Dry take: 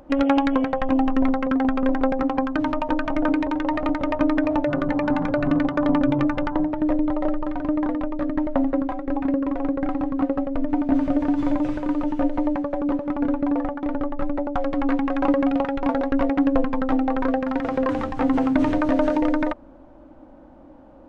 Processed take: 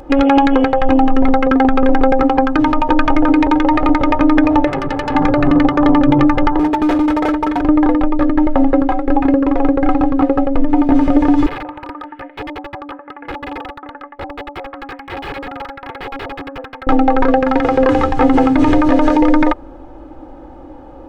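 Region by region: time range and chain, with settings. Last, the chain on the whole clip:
4.67–5.15 s: de-hum 147.6 Hz, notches 2 + valve stage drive 25 dB, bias 0.8
6.59–7.61 s: high-pass 75 Hz + comb 4.5 ms, depth 99% + hard clipper -22 dBFS
11.46–16.87 s: LFO band-pass saw up 1.1 Hz 730–2200 Hz + integer overflow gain 28.5 dB + distance through air 460 m
whole clip: comb 2.4 ms, depth 57%; loudness maximiser +12 dB; trim -1 dB

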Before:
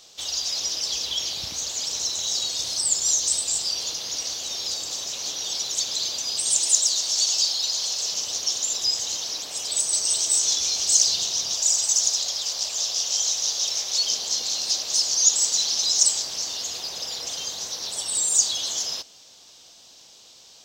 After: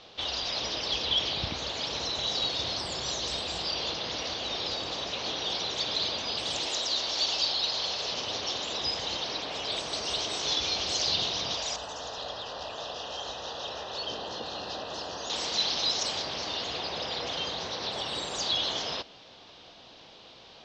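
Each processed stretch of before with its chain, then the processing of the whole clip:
11.76–15.30 s: Butterworth band-stop 2.2 kHz, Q 4.3 + peaking EQ 5.2 kHz -11.5 dB 1.7 oct + hum notches 50/100/150/200/250/300/350/400 Hz
whole clip: low-pass 3.9 kHz 24 dB/octave; treble shelf 3 kHz -9 dB; trim +8 dB

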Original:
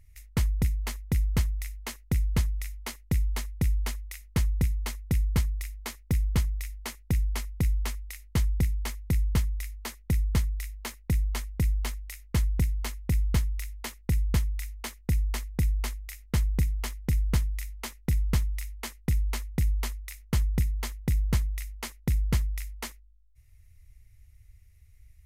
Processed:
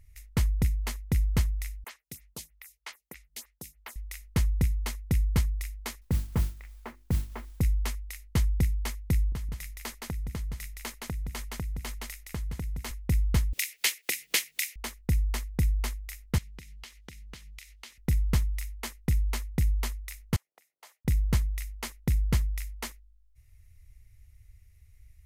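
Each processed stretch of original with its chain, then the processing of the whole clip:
1.84–3.96 s: high-pass 1.4 kHz 6 dB/octave + lamp-driven phase shifter 3.2 Hz
6.01–7.61 s: low-pass 1.4 kHz + hum notches 50/100/150/200/250/300/350 Hz + modulation noise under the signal 20 dB
9.32–12.91 s: delay 168 ms -4.5 dB + compression 12:1, threshold -30 dBFS
13.53–14.76 s: high-pass 340 Hz 24 dB/octave + resonant high shelf 1.6 kHz +12 dB, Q 1.5 + upward compressor, threshold -29 dBFS
16.38–17.98 s: frequency weighting D + compression 8:1, threshold -43 dBFS
20.36–21.05 s: compression 16:1, threshold -34 dBFS + ladder high-pass 550 Hz, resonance 40%
whole clip: none

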